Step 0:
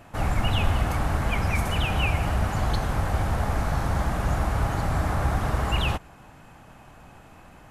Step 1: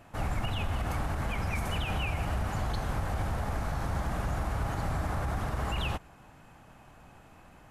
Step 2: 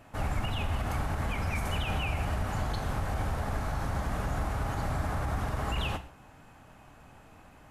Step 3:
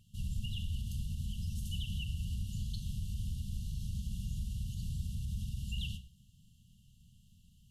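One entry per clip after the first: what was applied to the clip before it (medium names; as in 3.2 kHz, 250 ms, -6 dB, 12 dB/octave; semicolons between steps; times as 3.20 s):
peak limiter -17 dBFS, peak gain reduction 6.5 dB; trim -5.5 dB
gated-style reverb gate 180 ms falling, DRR 9 dB
brick-wall FIR band-stop 230–2700 Hz; trim -5 dB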